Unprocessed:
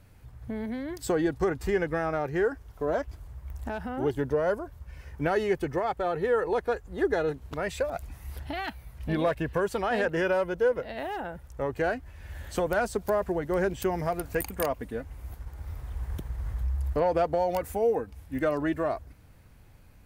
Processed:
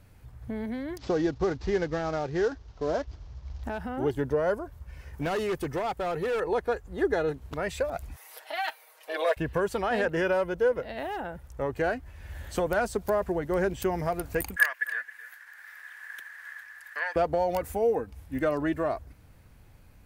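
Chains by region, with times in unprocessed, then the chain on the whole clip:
0:00.98–0:03.64: variable-slope delta modulation 32 kbit/s + parametric band 2,000 Hz −3.5 dB 1.6 octaves
0:05.13–0:06.40: high-shelf EQ 5,500 Hz +8 dB + gain into a clipping stage and back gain 25.5 dB
0:08.16–0:09.37: Butterworth high-pass 470 Hz + high-shelf EQ 5,500 Hz +3.5 dB + comb filter 6.4 ms, depth 89%
0:14.56–0:17.16: high-pass with resonance 1,700 Hz, resonance Q 15 + single-tap delay 267 ms −15.5 dB
whole clip: no processing

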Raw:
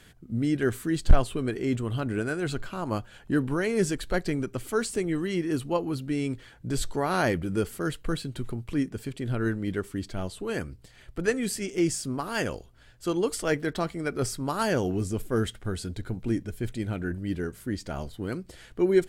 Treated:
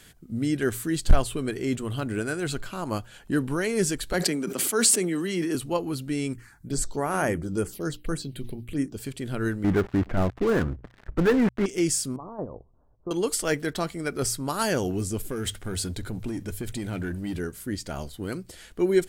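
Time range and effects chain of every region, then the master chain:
0:04.13–0:05.55: Butterworth high-pass 160 Hz 48 dB per octave + level that may fall only so fast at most 31 dB per second
0:06.33–0:08.97: phaser swept by the level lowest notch 440 Hz, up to 4,200 Hz, full sweep at −22.5 dBFS + mains-hum notches 60/120/180/240/300/360 Hz
0:09.64–0:11.66: gap after every zero crossing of 0.18 ms + low-pass filter 1,800 Hz 24 dB per octave + leveller curve on the samples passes 3
0:12.16–0:13.11: Chebyshev low-pass filter 1,100 Hz, order 5 + output level in coarse steps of 10 dB
0:15.24–0:17.39: mains-hum notches 50/100 Hz + downward compressor 10 to 1, threshold −28 dBFS + leveller curve on the samples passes 1
whole clip: high-shelf EQ 4,600 Hz +9 dB; mains-hum notches 60/120 Hz

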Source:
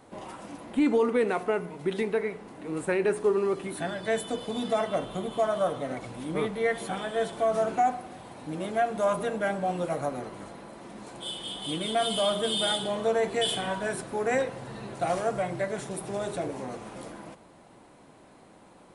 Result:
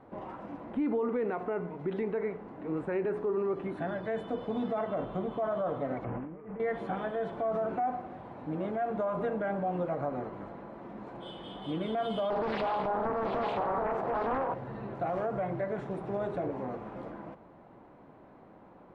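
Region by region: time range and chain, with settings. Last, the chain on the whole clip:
0:06.04–0:06.60: variable-slope delta modulation 16 kbit/s + compressor whose output falls as the input rises −41 dBFS + low-pass filter 1,900 Hz
0:12.30–0:14.54: parametric band 830 Hz +14.5 dB 1.2 octaves + single-tap delay 730 ms −7.5 dB + highs frequency-modulated by the lows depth 0.9 ms
whole clip: low-pass filter 1,500 Hz 12 dB per octave; brickwall limiter −24 dBFS

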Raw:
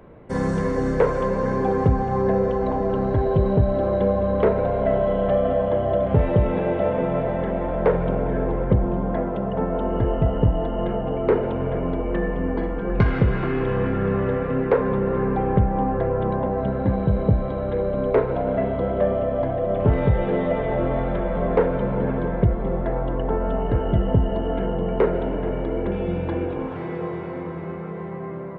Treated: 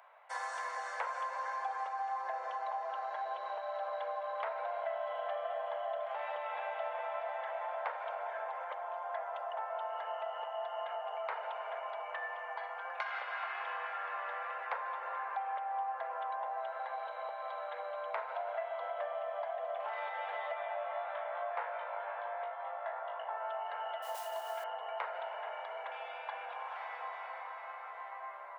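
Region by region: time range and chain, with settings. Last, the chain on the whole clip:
0:20.54–0:23.37: Bessel high-pass filter 420 Hz + high-frequency loss of the air 220 metres + flutter between parallel walls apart 3.2 metres, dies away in 0.27 s
0:24.02–0:24.64: noise that follows the level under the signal 29 dB + high-pass filter 440 Hz 24 dB per octave
whole clip: Butterworth high-pass 690 Hz 48 dB per octave; downward compressor 2.5 to 1, threshold −33 dBFS; level −3.5 dB

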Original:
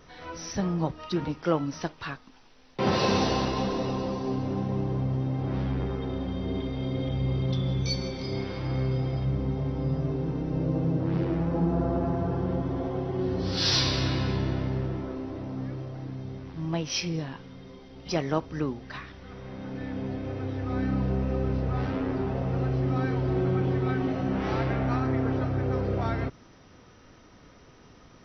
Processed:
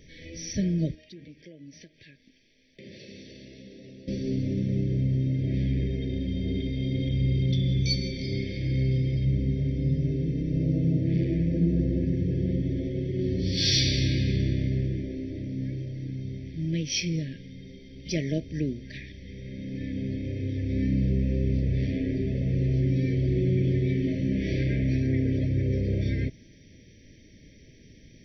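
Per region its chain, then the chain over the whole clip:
0:00.95–0:04.08: low-pass filter 1,200 Hz 6 dB per octave + spectral tilt +3 dB per octave + downward compressor 3 to 1, threshold −46 dBFS
whole clip: brick-wall band-stop 650–1,600 Hz; comb filter 0.9 ms, depth 52%

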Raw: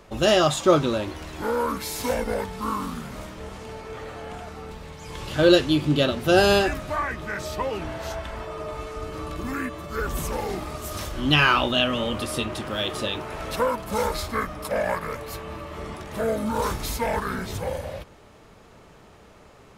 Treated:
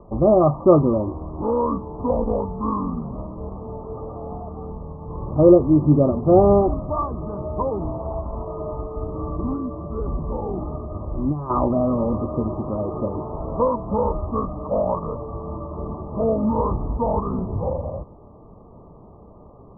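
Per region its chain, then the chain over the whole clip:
0:09.55–0:11.50: high shelf with overshoot 1,800 Hz +9.5 dB, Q 1.5 + downward compressor 2 to 1, threshold −26 dBFS
whole clip: Chebyshev low-pass filter 1,200 Hz, order 8; low-shelf EQ 450 Hz +6 dB; level +2 dB

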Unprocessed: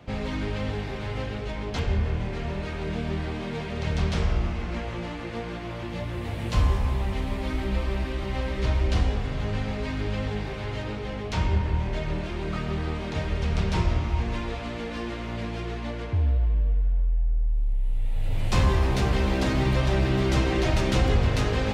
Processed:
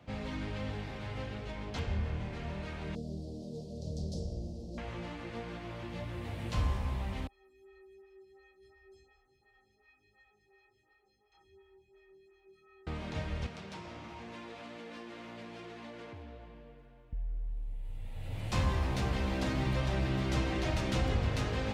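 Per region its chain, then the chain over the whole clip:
0:02.95–0:04.78: Chebyshev band-stop filter 570–4,700 Hz, order 3 + low-shelf EQ 71 Hz −9 dB
0:07.27–0:12.87: stiff-string resonator 380 Hz, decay 0.78 s, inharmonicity 0.03 + phaser with staggered stages 2.8 Hz
0:13.46–0:17.13: high-pass filter 200 Hz + downward compressor 3 to 1, threshold −35 dBFS
whole clip: high-pass filter 48 Hz; notch filter 400 Hz, Q 12; level −8 dB

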